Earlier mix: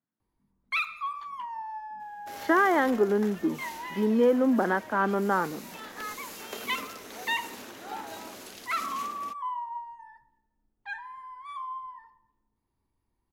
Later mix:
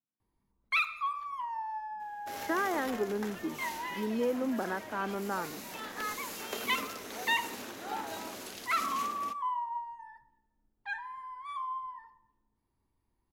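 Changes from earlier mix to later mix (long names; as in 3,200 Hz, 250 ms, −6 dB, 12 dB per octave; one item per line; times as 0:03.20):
speech −9.0 dB
second sound: send +10.5 dB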